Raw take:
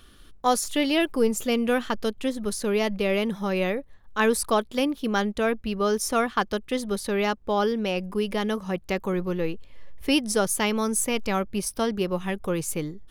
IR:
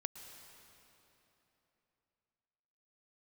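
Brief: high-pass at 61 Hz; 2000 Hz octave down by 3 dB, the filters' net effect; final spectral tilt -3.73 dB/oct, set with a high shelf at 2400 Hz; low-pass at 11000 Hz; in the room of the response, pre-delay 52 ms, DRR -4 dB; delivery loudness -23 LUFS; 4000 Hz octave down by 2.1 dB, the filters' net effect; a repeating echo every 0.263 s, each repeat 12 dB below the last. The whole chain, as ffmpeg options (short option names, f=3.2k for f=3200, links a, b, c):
-filter_complex "[0:a]highpass=61,lowpass=11k,equalizer=f=2k:t=o:g=-5.5,highshelf=f=2.4k:g=6.5,equalizer=f=4k:t=o:g=-7,aecho=1:1:263|526|789:0.251|0.0628|0.0157,asplit=2[a][b];[1:a]atrim=start_sample=2205,adelay=52[c];[b][c]afir=irnorm=-1:irlink=0,volume=6dB[d];[a][d]amix=inputs=2:normalize=0,volume=-3dB"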